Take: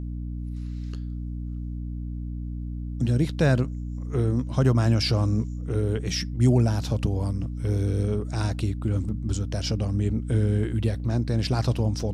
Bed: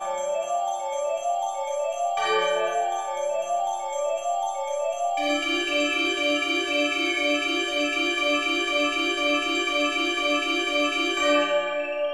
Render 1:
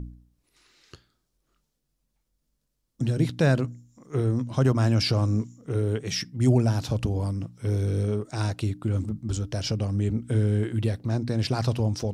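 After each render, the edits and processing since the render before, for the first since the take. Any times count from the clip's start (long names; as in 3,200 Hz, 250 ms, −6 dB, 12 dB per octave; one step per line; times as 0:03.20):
hum removal 60 Hz, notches 5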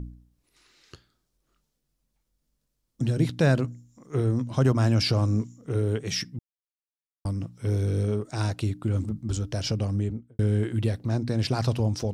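0:06.39–0:07.25: silence
0:09.89–0:10.39: fade out and dull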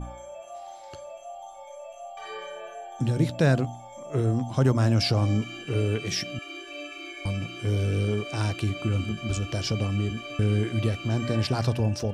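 mix in bed −15 dB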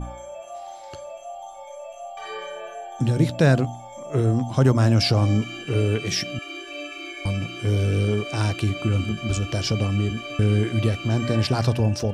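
level +4 dB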